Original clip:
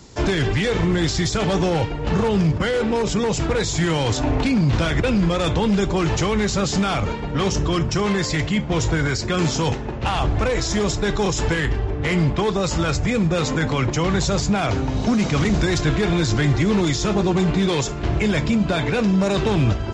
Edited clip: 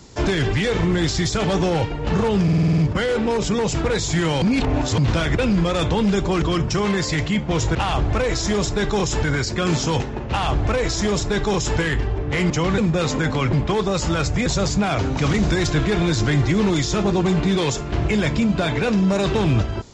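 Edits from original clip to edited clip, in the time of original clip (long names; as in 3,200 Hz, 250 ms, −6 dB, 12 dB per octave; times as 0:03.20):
0:02.43: stutter 0.05 s, 8 plays
0:04.07–0:04.63: reverse
0:06.07–0:07.63: remove
0:10.01–0:11.50: duplicate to 0:08.96
0:12.22–0:13.15: swap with 0:13.90–0:14.18
0:14.89–0:15.28: remove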